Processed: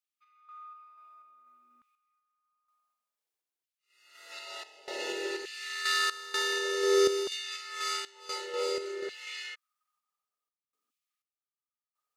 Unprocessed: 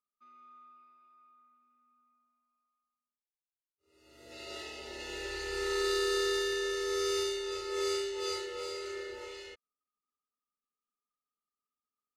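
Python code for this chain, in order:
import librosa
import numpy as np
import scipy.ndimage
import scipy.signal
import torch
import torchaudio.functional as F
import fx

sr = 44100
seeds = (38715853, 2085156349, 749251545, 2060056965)

y = fx.filter_lfo_highpass(x, sr, shape='saw_down', hz=0.55, low_hz=270.0, high_hz=2800.0, q=1.6)
y = fx.tremolo_random(y, sr, seeds[0], hz=4.1, depth_pct=90)
y = y * librosa.db_to_amplitude(7.0)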